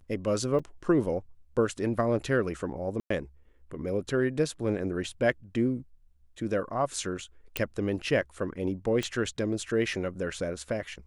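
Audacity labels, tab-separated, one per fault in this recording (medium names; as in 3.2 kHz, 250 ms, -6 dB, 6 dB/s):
0.590000	0.590000	dropout 4.9 ms
3.000000	3.100000	dropout 104 ms
7.570000	7.570000	pop -12 dBFS
9.030000	9.030000	pop -18 dBFS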